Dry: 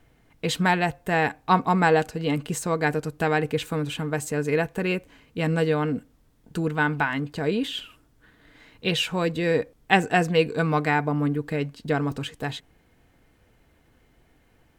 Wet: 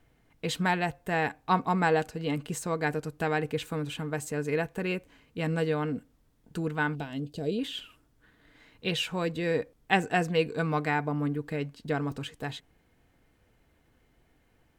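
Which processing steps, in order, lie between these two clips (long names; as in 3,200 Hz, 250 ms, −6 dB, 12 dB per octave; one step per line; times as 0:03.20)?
0:06.95–0:07.59: flat-topped bell 1,400 Hz −15.5 dB
level −5.5 dB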